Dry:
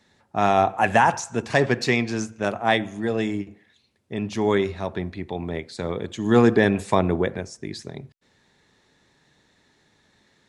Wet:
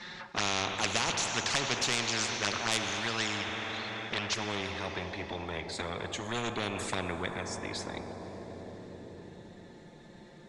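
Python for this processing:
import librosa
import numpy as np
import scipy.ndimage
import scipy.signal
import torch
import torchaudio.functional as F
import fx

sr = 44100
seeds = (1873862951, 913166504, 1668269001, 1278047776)

y = fx.band_shelf(x, sr, hz=2500.0, db=fx.steps((0.0, 9.5), (4.33, -8.5)), octaves=2.9)
y = fx.env_flanger(y, sr, rest_ms=5.8, full_db=-15.5)
y = 10.0 ** (-10.5 / 20.0) * np.tanh(y / 10.0 ** (-10.5 / 20.0))
y = fx.air_absorb(y, sr, metres=93.0)
y = fx.rev_plate(y, sr, seeds[0], rt60_s=4.3, hf_ratio=0.9, predelay_ms=0, drr_db=14.0)
y = fx.spectral_comp(y, sr, ratio=4.0)
y = y * librosa.db_to_amplitude(-4.5)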